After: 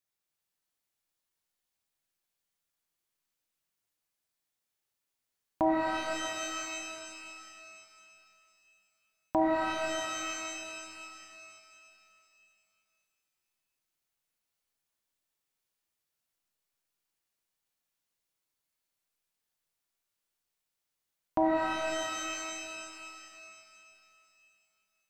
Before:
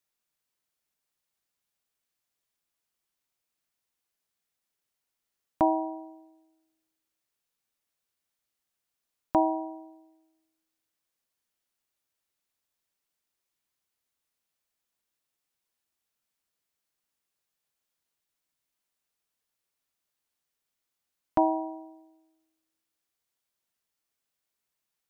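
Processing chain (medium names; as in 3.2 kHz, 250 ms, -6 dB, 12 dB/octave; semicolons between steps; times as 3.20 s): pitch-shifted reverb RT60 2.7 s, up +12 st, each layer -2 dB, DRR 0 dB; trim -5 dB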